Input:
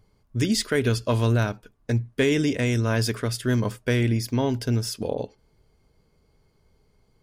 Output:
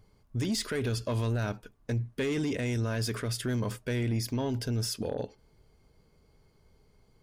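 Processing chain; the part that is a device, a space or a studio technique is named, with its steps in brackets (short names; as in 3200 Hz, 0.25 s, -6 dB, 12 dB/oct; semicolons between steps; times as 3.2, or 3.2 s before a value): soft clipper into limiter (soft clip -16 dBFS, distortion -18 dB; limiter -24 dBFS, peak gain reduction 7.5 dB)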